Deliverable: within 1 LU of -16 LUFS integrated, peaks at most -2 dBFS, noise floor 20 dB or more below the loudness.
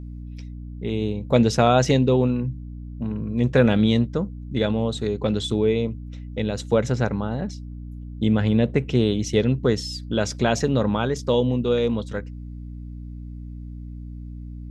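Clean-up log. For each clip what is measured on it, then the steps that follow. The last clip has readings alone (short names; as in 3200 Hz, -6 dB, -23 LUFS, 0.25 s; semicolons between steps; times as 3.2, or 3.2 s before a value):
hum 60 Hz; harmonics up to 300 Hz; hum level -34 dBFS; loudness -22.5 LUFS; peak -4.0 dBFS; loudness target -16.0 LUFS
-> notches 60/120/180/240/300 Hz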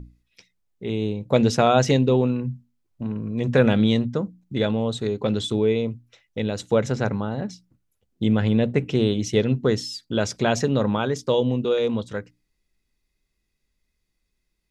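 hum none; loudness -23.0 LUFS; peak -4.0 dBFS; loudness target -16.0 LUFS
-> gain +7 dB; limiter -2 dBFS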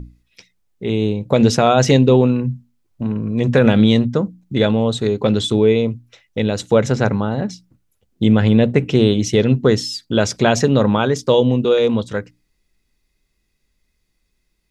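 loudness -16.5 LUFS; peak -2.0 dBFS; noise floor -69 dBFS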